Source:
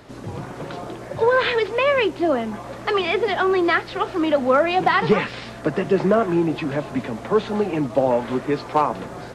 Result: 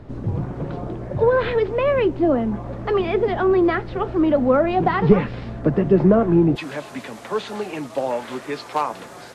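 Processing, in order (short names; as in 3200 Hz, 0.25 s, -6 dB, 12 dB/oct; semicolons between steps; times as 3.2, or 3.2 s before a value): tilt -4 dB/oct, from 6.55 s +2.5 dB/oct; gain -3 dB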